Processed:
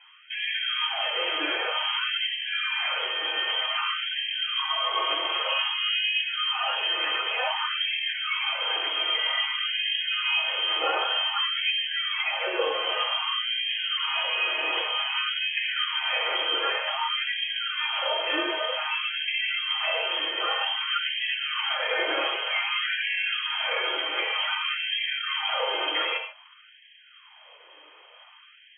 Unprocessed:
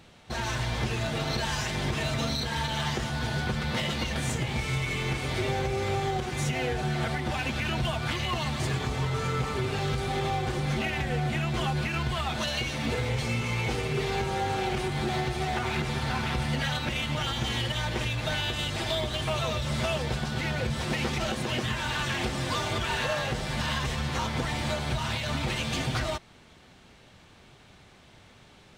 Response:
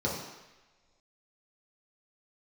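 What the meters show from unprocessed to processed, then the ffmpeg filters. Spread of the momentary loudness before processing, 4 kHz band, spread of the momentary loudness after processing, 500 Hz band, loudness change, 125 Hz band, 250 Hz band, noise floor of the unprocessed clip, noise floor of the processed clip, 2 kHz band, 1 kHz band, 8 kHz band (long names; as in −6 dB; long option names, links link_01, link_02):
1 LU, +10.0 dB, 3 LU, −2.0 dB, +4.0 dB, below −40 dB, −14.0 dB, −55 dBFS, −53 dBFS, +5.5 dB, +1.5 dB, below −40 dB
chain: -filter_complex "[0:a]lowpass=frequency=2800:width_type=q:width=0.5098,lowpass=frequency=2800:width_type=q:width=0.6013,lowpass=frequency=2800:width_type=q:width=0.9,lowpass=frequency=2800:width_type=q:width=2.563,afreqshift=-3300[link_01];[1:a]atrim=start_sample=2205,afade=type=out:start_time=0.21:duration=0.01,atrim=end_sample=9702[link_02];[link_01][link_02]afir=irnorm=-1:irlink=0,afftfilt=real='re*gte(b*sr/1024,290*pow(1600/290,0.5+0.5*sin(2*PI*0.53*pts/sr)))':imag='im*gte(b*sr/1024,290*pow(1600/290,0.5+0.5*sin(2*PI*0.53*pts/sr)))':win_size=1024:overlap=0.75,volume=-1dB"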